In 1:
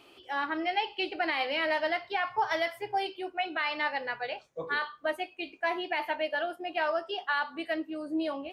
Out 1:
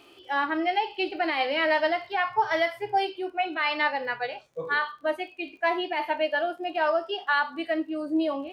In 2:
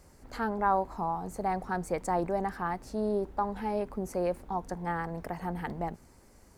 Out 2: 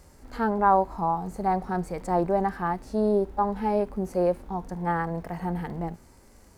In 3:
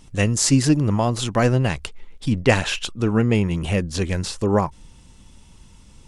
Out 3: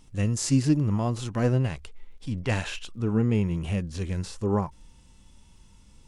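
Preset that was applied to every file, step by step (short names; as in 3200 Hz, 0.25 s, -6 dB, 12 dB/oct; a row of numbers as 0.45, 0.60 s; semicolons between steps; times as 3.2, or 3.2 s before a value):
crackle 25/s -50 dBFS; harmonic-percussive split percussive -11 dB; match loudness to -27 LUFS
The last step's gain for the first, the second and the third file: +6.0, +7.0, -4.0 dB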